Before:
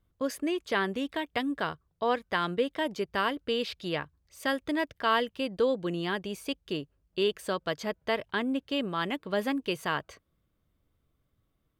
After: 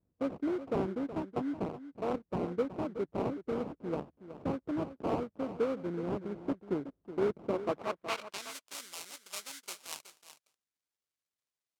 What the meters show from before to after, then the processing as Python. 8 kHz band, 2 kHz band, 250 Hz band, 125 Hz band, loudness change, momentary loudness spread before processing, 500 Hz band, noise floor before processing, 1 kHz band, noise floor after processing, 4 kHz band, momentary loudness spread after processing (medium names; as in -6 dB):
+1.5 dB, -15.0 dB, -3.5 dB, -1.0 dB, -5.5 dB, 7 LU, -4.0 dB, -76 dBFS, -8.5 dB, under -85 dBFS, -12.5 dB, 9 LU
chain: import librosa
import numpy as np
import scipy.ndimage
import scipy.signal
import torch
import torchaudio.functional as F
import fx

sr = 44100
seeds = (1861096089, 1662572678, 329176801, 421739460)

p1 = fx.sample_hold(x, sr, seeds[0], rate_hz=1800.0, jitter_pct=20)
p2 = fx.rider(p1, sr, range_db=10, speed_s=2.0)
p3 = fx.hpss(p2, sr, part='harmonic', gain_db=-4)
p4 = fx.filter_sweep_bandpass(p3, sr, from_hz=280.0, to_hz=8000.0, start_s=7.52, end_s=8.51, q=0.75)
y = p4 + fx.echo_single(p4, sr, ms=371, db=-12.5, dry=0)